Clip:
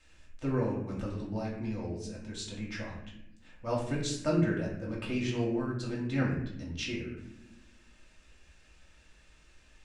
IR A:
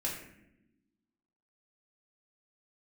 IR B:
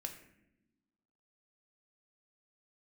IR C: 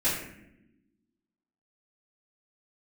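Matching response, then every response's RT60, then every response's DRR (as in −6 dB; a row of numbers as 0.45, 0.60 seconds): A; non-exponential decay, non-exponential decay, non-exponential decay; −4.5, 3.5, −14.0 decibels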